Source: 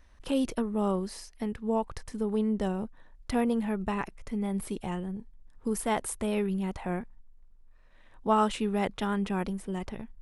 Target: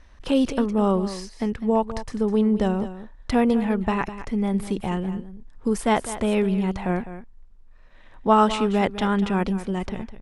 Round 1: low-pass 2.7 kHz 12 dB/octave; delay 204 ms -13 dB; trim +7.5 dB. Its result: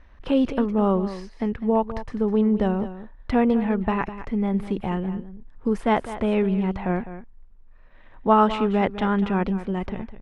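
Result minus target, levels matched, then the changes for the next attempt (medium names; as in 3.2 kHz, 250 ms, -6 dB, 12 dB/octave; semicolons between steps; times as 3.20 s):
8 kHz band -15.5 dB
change: low-pass 7.1 kHz 12 dB/octave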